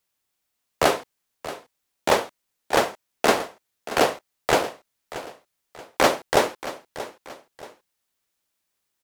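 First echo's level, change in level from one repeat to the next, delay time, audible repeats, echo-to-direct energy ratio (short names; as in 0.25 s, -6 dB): -14.5 dB, -8.5 dB, 0.63 s, 2, -14.0 dB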